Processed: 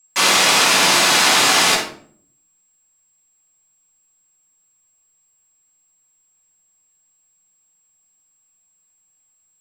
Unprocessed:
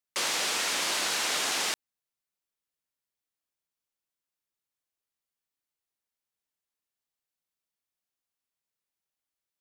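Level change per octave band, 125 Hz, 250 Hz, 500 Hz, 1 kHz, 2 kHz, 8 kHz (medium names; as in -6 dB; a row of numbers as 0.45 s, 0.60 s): +21.5 dB, +18.0 dB, +15.5 dB, +17.5 dB, +15.5 dB, +13.5 dB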